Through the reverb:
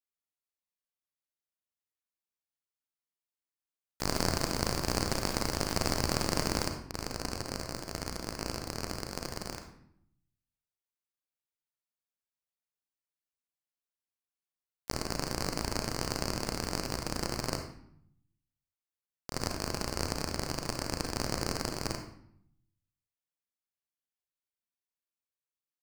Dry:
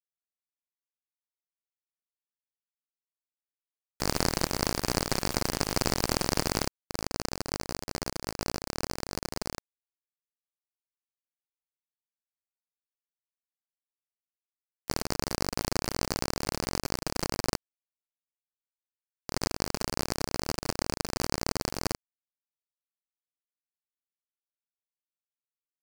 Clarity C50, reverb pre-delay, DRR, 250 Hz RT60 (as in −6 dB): 6.5 dB, 33 ms, 4.5 dB, 0.95 s